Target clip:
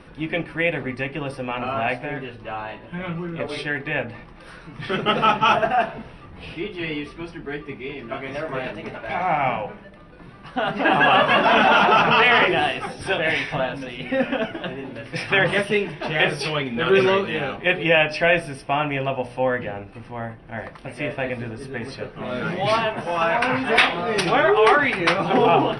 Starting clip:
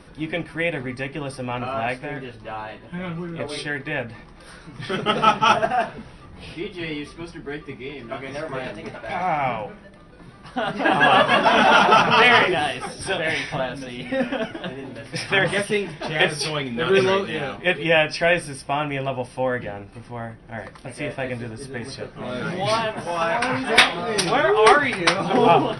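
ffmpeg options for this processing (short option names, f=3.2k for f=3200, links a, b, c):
-af "bass=f=250:g=-1,treble=f=4k:g=-10,alimiter=limit=-9.5dB:level=0:latency=1:release=14,equalizer=f=2.7k:t=o:w=0.33:g=4,bandreject=f=60.97:t=h:w=4,bandreject=f=121.94:t=h:w=4,bandreject=f=182.91:t=h:w=4,bandreject=f=243.88:t=h:w=4,bandreject=f=304.85:t=h:w=4,bandreject=f=365.82:t=h:w=4,bandreject=f=426.79:t=h:w=4,bandreject=f=487.76:t=h:w=4,bandreject=f=548.73:t=h:w=4,bandreject=f=609.7:t=h:w=4,bandreject=f=670.67:t=h:w=4,bandreject=f=731.64:t=h:w=4,bandreject=f=792.61:t=h:w=4,bandreject=f=853.58:t=h:w=4,bandreject=f=914.55:t=h:w=4,bandreject=f=975.52:t=h:w=4,bandreject=f=1.03649k:t=h:w=4,volume=2dB"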